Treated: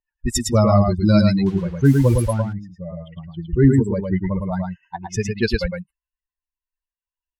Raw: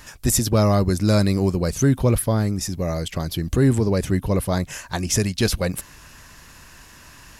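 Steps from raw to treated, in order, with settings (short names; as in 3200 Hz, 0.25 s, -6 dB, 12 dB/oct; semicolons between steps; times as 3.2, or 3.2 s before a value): per-bin expansion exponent 3; 1.46–2.42 requantised 8-bit, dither triangular; low-pass opened by the level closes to 660 Hz, open at -17 dBFS; on a send: echo 0.109 s -4 dB; on the sum: gain +6.5 dB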